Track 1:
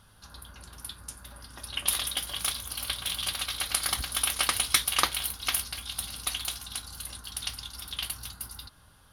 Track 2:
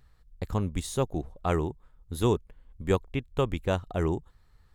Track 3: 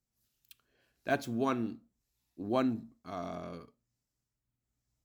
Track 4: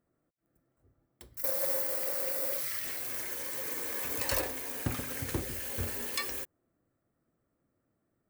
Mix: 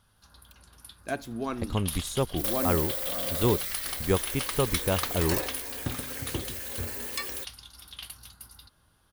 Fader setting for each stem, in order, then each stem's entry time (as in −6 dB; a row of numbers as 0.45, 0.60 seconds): −8.0, 0.0, −1.5, +0.5 decibels; 0.00, 1.20, 0.00, 1.00 seconds